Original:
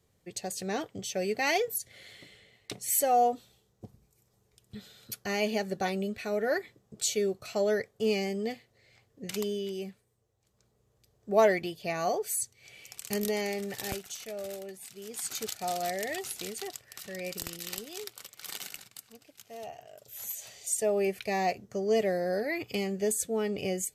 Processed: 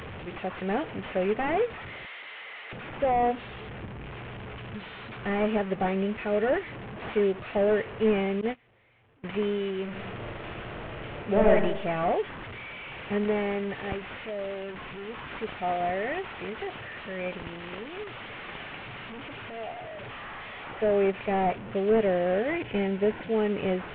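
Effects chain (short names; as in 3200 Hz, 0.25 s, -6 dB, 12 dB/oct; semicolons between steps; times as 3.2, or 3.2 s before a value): delta modulation 16 kbps, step -38 dBFS; 2.06–2.73 HPF 780 Hz 12 dB/oct; 8.41–9.24 gate -33 dBFS, range -23 dB; 9.83–11.52 reverb throw, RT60 0.83 s, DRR -0.5 dB; 22.51–23.34 Butterworth band-stop 1200 Hz, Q 6; gain +4.5 dB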